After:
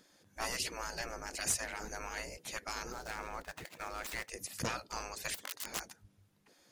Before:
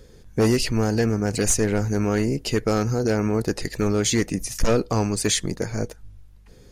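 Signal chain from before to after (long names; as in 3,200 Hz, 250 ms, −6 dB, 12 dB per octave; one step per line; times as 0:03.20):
0:02.92–0:04.29: running median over 9 samples
0:05.34–0:05.80: wrap-around overflow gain 21 dB
gate on every frequency bin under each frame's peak −15 dB weak
level −7 dB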